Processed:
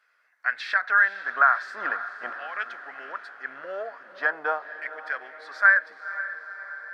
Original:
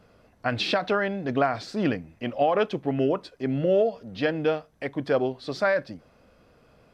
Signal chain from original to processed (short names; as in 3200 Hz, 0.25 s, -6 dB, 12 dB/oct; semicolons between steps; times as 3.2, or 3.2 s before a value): resonant high shelf 2100 Hz -8.5 dB, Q 3; LFO high-pass saw down 0.43 Hz 900–2500 Hz; diffused feedback echo 0.499 s, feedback 58%, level -13 dB